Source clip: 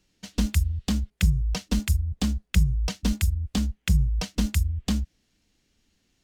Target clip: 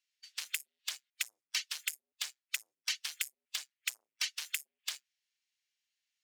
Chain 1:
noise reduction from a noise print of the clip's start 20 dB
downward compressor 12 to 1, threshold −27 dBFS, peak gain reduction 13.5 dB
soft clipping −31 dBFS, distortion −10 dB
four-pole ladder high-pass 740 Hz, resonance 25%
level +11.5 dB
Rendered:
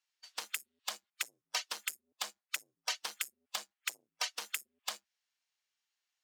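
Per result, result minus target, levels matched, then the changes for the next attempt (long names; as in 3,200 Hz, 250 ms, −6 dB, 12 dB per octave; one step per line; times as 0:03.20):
1,000 Hz band +13.0 dB; downward compressor: peak gain reduction +5.5 dB
change: four-pole ladder high-pass 1,500 Hz, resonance 25%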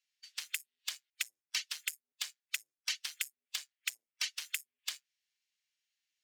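downward compressor: peak gain reduction +5.5 dB
change: downward compressor 12 to 1, threshold −21 dBFS, peak gain reduction 8 dB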